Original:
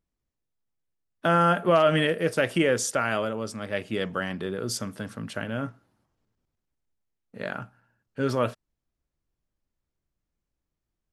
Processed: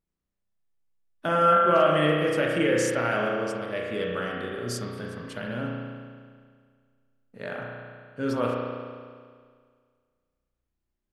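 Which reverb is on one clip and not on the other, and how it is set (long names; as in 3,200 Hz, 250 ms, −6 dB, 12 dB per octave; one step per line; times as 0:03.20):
spring reverb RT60 1.9 s, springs 33 ms, chirp 40 ms, DRR −2 dB
level −4.5 dB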